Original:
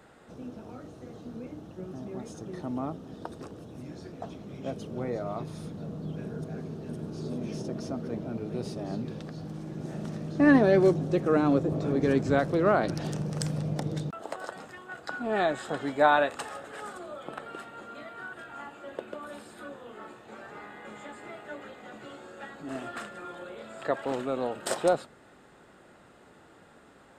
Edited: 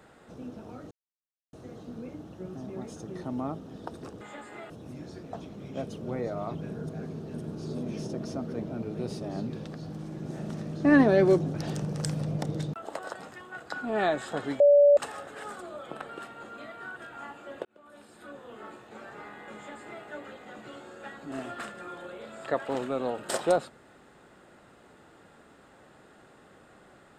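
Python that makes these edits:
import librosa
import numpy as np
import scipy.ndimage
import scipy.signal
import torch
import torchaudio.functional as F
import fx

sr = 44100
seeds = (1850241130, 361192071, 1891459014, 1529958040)

y = fx.edit(x, sr, fx.insert_silence(at_s=0.91, length_s=0.62),
    fx.cut(start_s=5.44, length_s=0.66),
    fx.cut(start_s=11.09, length_s=1.82),
    fx.bleep(start_s=15.97, length_s=0.37, hz=576.0, db=-14.0),
    fx.fade_in_span(start_s=19.02, length_s=0.91),
    fx.duplicate(start_s=20.92, length_s=0.49, to_s=3.59), tone=tone)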